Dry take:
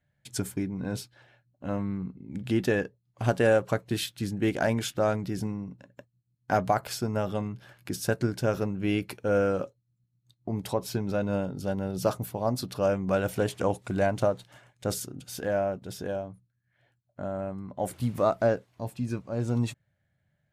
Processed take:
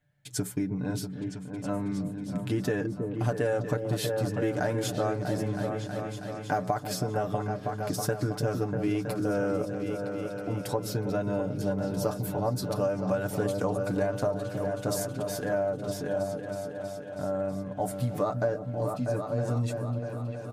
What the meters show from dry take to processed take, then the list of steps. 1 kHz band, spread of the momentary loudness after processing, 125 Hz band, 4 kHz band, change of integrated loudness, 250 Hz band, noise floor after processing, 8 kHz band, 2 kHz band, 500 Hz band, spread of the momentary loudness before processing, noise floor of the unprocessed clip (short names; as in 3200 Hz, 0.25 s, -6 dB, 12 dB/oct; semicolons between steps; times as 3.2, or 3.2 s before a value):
-1.0 dB, 6 LU, +1.0 dB, -2.0 dB, -1.0 dB, 0.0 dB, -39 dBFS, +0.5 dB, -2.5 dB, -1.0 dB, 12 LU, -76 dBFS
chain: repeats that get brighter 0.321 s, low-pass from 400 Hz, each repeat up 2 oct, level -6 dB; dynamic EQ 2800 Hz, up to -6 dB, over -50 dBFS, Q 1.5; comb 6.8 ms, depth 65%; compressor, threshold -24 dBFS, peak gain reduction 8.5 dB